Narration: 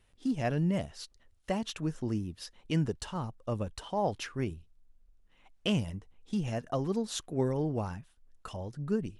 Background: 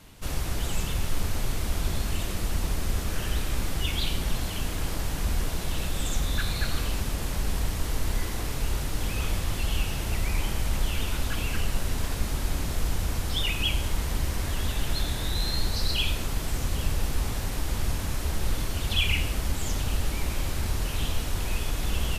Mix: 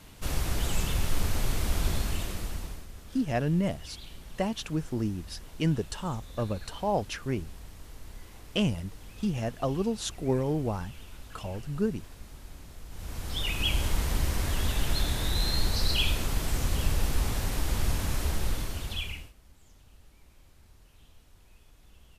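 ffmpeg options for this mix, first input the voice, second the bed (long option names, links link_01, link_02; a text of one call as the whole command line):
ffmpeg -i stem1.wav -i stem2.wav -filter_complex "[0:a]adelay=2900,volume=2.5dB[link_01];[1:a]volume=18dB,afade=type=out:start_time=1.88:duration=0.99:silence=0.125893,afade=type=in:start_time=12.89:duration=0.94:silence=0.125893,afade=type=out:start_time=18.22:duration=1.11:silence=0.0354813[link_02];[link_01][link_02]amix=inputs=2:normalize=0" out.wav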